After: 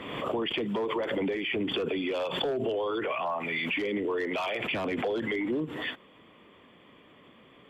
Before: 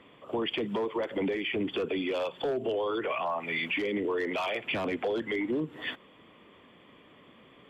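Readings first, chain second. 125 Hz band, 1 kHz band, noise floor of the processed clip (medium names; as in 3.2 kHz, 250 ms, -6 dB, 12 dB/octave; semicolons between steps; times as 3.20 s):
+2.5 dB, +1.0 dB, -57 dBFS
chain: swell ahead of each attack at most 40 dB/s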